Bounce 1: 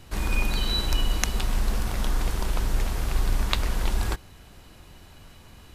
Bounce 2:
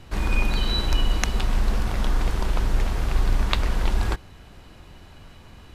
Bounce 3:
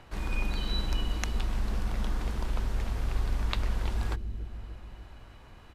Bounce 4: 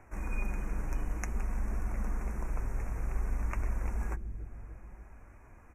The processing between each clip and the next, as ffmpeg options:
-af "highshelf=f=6700:g=-12,volume=1.41"
-filter_complex "[0:a]acrossover=split=440|2300[s0][s1][s2];[s0]aecho=1:1:292|584|876|1168|1460|1752|2044:0.501|0.286|0.163|0.0928|0.0529|0.0302|0.0172[s3];[s1]acompressor=mode=upward:threshold=0.00794:ratio=2.5[s4];[s3][s4][s2]amix=inputs=3:normalize=0,volume=0.355"
-af "flanger=delay=2.7:depth=4.8:regen=-52:speed=0.55:shape=triangular,asuperstop=centerf=3800:order=12:qfactor=1.2"

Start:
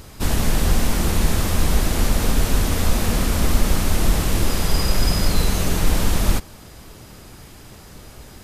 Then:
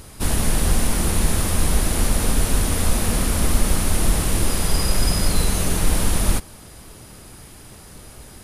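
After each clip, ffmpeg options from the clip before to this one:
-af "equalizer=f=9800:w=3.9:g=11.5,volume=0.891"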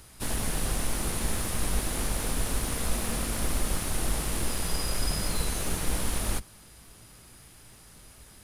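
-filter_complex "[0:a]acrossover=split=260|1200[s0][s1][s2];[s0]flanger=delay=17:depth=2.5:speed=0.67[s3];[s1]acrusher=bits=6:dc=4:mix=0:aa=0.000001[s4];[s3][s4][s2]amix=inputs=3:normalize=0,volume=0.398"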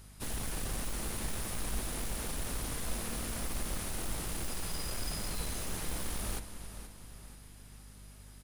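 -filter_complex "[0:a]aecho=1:1:479|958|1437|1916:0.224|0.0985|0.0433|0.0191,asplit=2[s0][s1];[s1]aeval=exprs='(mod(15.8*val(0)+1,2)-1)/15.8':c=same,volume=0.398[s2];[s0][s2]amix=inputs=2:normalize=0,aeval=exprs='val(0)+0.00631*(sin(2*PI*50*n/s)+sin(2*PI*2*50*n/s)/2+sin(2*PI*3*50*n/s)/3+sin(2*PI*4*50*n/s)/4+sin(2*PI*5*50*n/s)/5)':c=same,volume=0.355"

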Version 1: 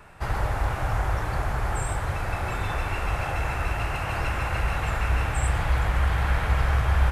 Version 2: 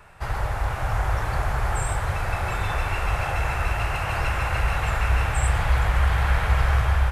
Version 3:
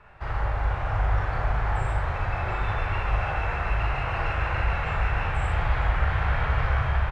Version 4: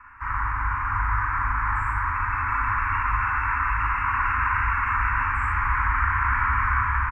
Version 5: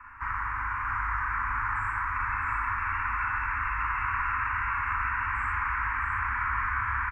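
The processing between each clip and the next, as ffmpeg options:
-af "equalizer=f=260:w=1.3:g=-7,dynaudnorm=f=620:g=3:m=1.41"
-filter_complex "[0:a]lowpass=3000,asplit=2[s0][s1];[s1]aecho=0:1:38|59:0.668|0.562[s2];[s0][s2]amix=inputs=2:normalize=0,volume=0.631"
-af "firequalizer=gain_entry='entry(100,0);entry(170,-22);entry(250,11);entry(390,-20);entry(680,-21);entry(980,14);entry(2300,7);entry(3700,-25);entry(5300,-7);entry(8800,0)':delay=0.05:min_phase=1,volume=0.708"
-filter_complex "[0:a]acrossover=split=130|1300|2700[s0][s1][s2][s3];[s0]acompressor=threshold=0.01:ratio=4[s4];[s1]acompressor=threshold=0.0126:ratio=4[s5];[s2]acompressor=threshold=0.0251:ratio=4[s6];[s3]acompressor=threshold=0.00282:ratio=4[s7];[s4][s5][s6][s7]amix=inputs=4:normalize=0,asplit=2[s8][s9];[s9]aecho=0:1:663:0.531[s10];[s8][s10]amix=inputs=2:normalize=0"

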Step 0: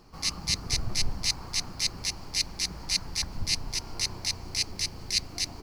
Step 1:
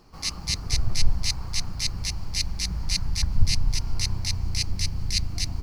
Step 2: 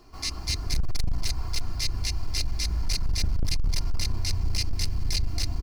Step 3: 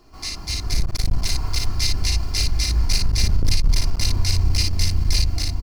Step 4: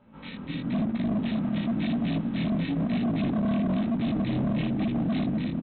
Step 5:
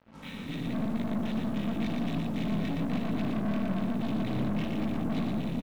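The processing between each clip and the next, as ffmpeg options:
-af "asubboost=boost=7.5:cutoff=150"
-filter_complex "[0:a]aecho=1:1:2.9:0.6,acrossover=split=490[s0][s1];[s1]alimiter=limit=0.126:level=0:latency=1:release=84[s2];[s0][s2]amix=inputs=2:normalize=0,volume=9.44,asoftclip=hard,volume=0.106"
-filter_complex "[0:a]dynaudnorm=f=470:g=3:m=1.88,asplit=2[s0][s1];[s1]aecho=0:1:36|57:0.376|0.631[s2];[s0][s2]amix=inputs=2:normalize=0"
-af "aeval=exprs='val(0)*sin(2*PI*220*n/s)':c=same,flanger=delay=17:depth=7.6:speed=1,aresample=8000,volume=15,asoftclip=hard,volume=0.0668,aresample=44100"
-filter_complex "[0:a]aeval=exprs='(tanh(31.6*val(0)+0.45)-tanh(0.45))/31.6':c=same,acrusher=bits=8:mix=0:aa=0.5,asplit=2[s0][s1];[s1]aecho=0:1:117:0.668[s2];[s0][s2]amix=inputs=2:normalize=0"

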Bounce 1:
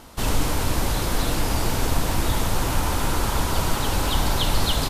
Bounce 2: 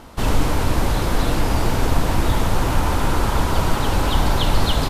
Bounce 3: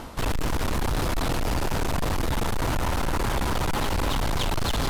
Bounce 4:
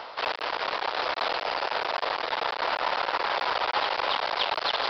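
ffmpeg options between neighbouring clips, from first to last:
-af "highshelf=f=3600:g=-9,volume=1.68"
-af "areverse,acompressor=mode=upward:threshold=0.126:ratio=2.5,areverse,asoftclip=type=hard:threshold=0.075"
-af "highpass=f=530:w=0.5412,highpass=f=530:w=1.3066,aresample=11025,acrusher=bits=3:mode=log:mix=0:aa=0.000001,aresample=44100,volume=1.5"

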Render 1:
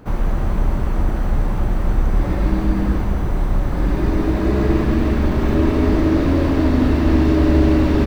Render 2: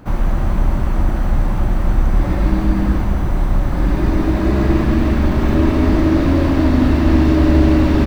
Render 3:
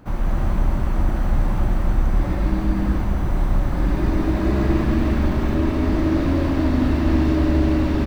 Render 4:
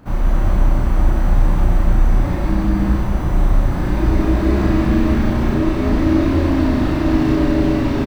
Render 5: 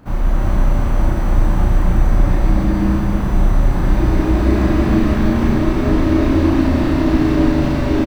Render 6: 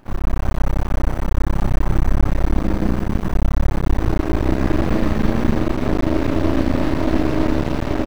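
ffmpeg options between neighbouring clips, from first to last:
-af "equalizer=f=440:w=6.6:g=-8.5,volume=1.33"
-af "dynaudnorm=f=110:g=5:m=1.78,volume=0.501"
-filter_complex "[0:a]asplit=2[s0][s1];[s1]adelay=34,volume=0.794[s2];[s0][s2]amix=inputs=2:normalize=0,volume=1.19"
-af "aecho=1:1:328:0.596"
-af "aeval=exprs='max(val(0),0)':c=same"

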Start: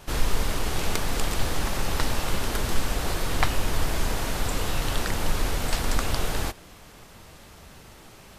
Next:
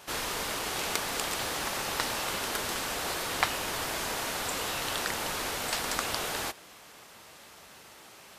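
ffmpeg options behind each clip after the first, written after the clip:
-af "highpass=f=600:p=1"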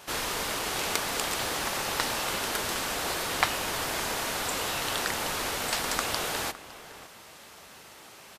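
-filter_complex "[0:a]asplit=2[s0][s1];[s1]adelay=559.8,volume=0.178,highshelf=f=4000:g=-12.6[s2];[s0][s2]amix=inputs=2:normalize=0,volume=1.26"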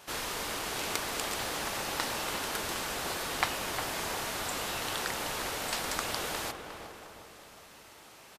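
-filter_complex "[0:a]asplit=2[s0][s1];[s1]adelay=357,lowpass=f=1700:p=1,volume=0.447,asplit=2[s2][s3];[s3]adelay=357,lowpass=f=1700:p=1,volume=0.54,asplit=2[s4][s5];[s5]adelay=357,lowpass=f=1700:p=1,volume=0.54,asplit=2[s6][s7];[s7]adelay=357,lowpass=f=1700:p=1,volume=0.54,asplit=2[s8][s9];[s9]adelay=357,lowpass=f=1700:p=1,volume=0.54,asplit=2[s10][s11];[s11]adelay=357,lowpass=f=1700:p=1,volume=0.54,asplit=2[s12][s13];[s13]adelay=357,lowpass=f=1700:p=1,volume=0.54[s14];[s0][s2][s4][s6][s8][s10][s12][s14]amix=inputs=8:normalize=0,volume=0.596"

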